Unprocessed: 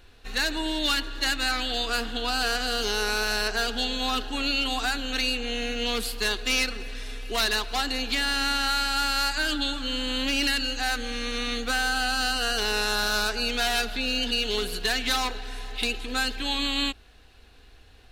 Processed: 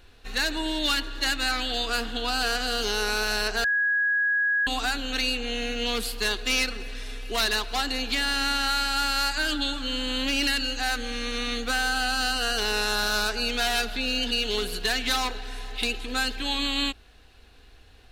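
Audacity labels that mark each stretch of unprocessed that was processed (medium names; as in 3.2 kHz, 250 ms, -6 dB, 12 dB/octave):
3.640000	4.670000	bleep 1.66 kHz -20.5 dBFS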